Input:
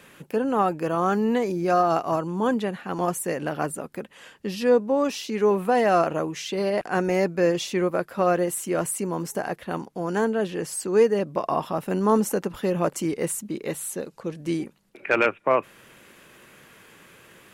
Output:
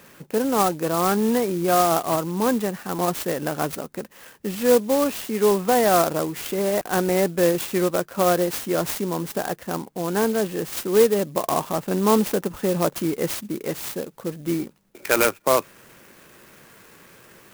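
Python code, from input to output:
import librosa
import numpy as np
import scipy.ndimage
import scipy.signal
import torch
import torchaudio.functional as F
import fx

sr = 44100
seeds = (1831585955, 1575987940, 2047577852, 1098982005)

y = fx.clock_jitter(x, sr, seeds[0], jitter_ms=0.065)
y = y * 10.0 ** (2.0 / 20.0)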